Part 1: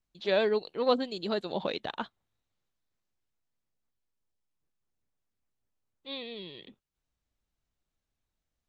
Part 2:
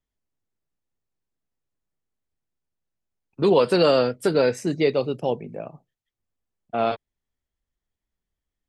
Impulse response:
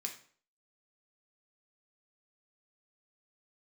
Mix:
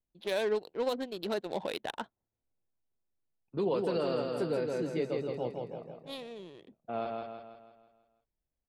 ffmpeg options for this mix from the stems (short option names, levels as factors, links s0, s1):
-filter_complex "[0:a]bass=f=250:g=-5,treble=f=4000:g=8,bandreject=f=1200:w=6.7,adynamicsmooth=sensitivity=4.5:basefreq=900,volume=1[s0];[1:a]tiltshelf=f=1400:g=3,adelay=150,volume=0.188,asplit=2[s1][s2];[s2]volume=0.668,aecho=0:1:163|326|489|652|815|978|1141:1|0.49|0.24|0.118|0.0576|0.0282|0.0138[s3];[s0][s1][s3]amix=inputs=3:normalize=0,alimiter=limit=0.0794:level=0:latency=1:release=158"